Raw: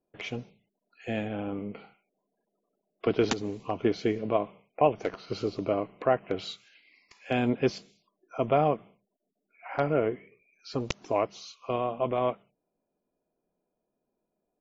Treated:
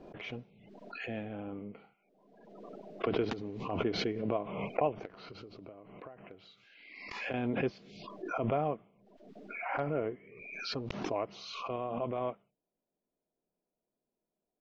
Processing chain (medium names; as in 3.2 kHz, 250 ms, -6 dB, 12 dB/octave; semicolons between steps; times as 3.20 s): 5.05–7.34 s: compression 16:1, threshold -39 dBFS, peak gain reduction 21.5 dB; distance through air 210 m; swell ahead of each attack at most 43 dB/s; trim -7.5 dB